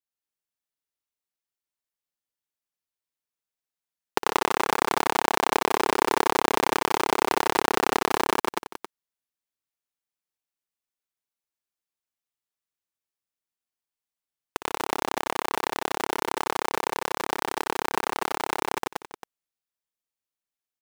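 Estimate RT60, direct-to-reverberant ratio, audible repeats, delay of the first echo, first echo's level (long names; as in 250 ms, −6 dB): no reverb audible, no reverb audible, 5, 59 ms, −13.0 dB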